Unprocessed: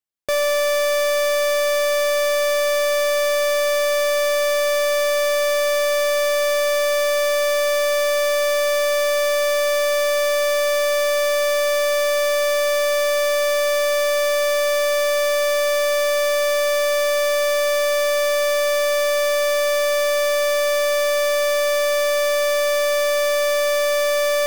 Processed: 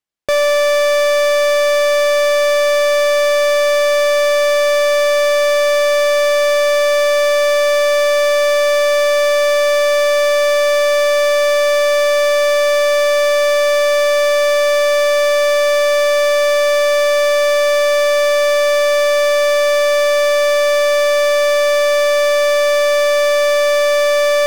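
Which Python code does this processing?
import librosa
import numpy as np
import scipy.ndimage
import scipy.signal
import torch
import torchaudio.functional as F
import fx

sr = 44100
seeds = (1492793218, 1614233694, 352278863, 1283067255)

y = fx.high_shelf(x, sr, hz=9400.0, db=-12.0)
y = y * librosa.db_to_amplitude(6.0)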